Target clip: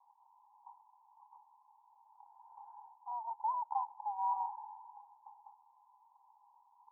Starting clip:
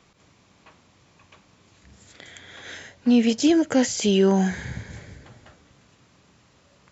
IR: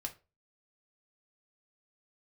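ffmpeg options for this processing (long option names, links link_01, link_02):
-af "acontrast=43,aeval=exprs='clip(val(0),-1,0.1)':channel_layout=same,asuperpass=centerf=900:order=8:qfactor=4.3"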